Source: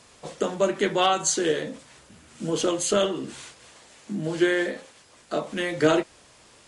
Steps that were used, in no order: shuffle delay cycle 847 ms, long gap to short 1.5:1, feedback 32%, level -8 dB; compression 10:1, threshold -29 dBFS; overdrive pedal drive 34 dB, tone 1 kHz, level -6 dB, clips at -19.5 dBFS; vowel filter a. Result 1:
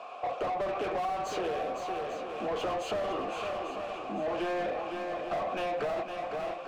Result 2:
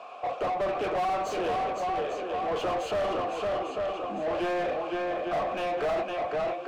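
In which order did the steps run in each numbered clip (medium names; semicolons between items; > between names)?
vowel filter > overdrive pedal > shuffle delay > compression; vowel filter > compression > shuffle delay > overdrive pedal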